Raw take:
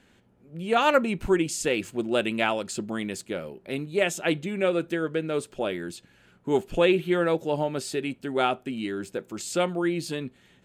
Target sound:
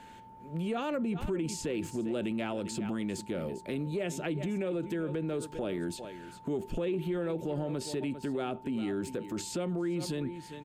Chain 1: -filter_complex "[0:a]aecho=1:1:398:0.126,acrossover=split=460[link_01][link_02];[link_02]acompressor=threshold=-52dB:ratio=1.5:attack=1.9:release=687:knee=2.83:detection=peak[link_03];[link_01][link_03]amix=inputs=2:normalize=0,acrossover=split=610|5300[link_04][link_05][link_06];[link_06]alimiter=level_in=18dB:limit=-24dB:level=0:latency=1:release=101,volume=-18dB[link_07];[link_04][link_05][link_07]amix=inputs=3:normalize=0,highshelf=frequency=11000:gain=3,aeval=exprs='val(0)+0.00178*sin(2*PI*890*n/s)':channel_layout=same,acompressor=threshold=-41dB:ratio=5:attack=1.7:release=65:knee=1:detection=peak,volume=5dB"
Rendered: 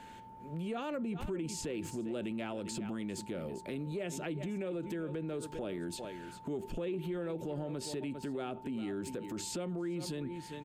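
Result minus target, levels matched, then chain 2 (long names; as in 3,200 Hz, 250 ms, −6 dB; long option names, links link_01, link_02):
downward compressor: peak gain reduction +5 dB
-filter_complex "[0:a]aecho=1:1:398:0.126,acrossover=split=460[link_01][link_02];[link_02]acompressor=threshold=-52dB:ratio=1.5:attack=1.9:release=687:knee=2.83:detection=peak[link_03];[link_01][link_03]amix=inputs=2:normalize=0,acrossover=split=610|5300[link_04][link_05][link_06];[link_06]alimiter=level_in=18dB:limit=-24dB:level=0:latency=1:release=101,volume=-18dB[link_07];[link_04][link_05][link_07]amix=inputs=3:normalize=0,highshelf=frequency=11000:gain=3,aeval=exprs='val(0)+0.00178*sin(2*PI*890*n/s)':channel_layout=same,acompressor=threshold=-35dB:ratio=5:attack=1.7:release=65:knee=1:detection=peak,volume=5dB"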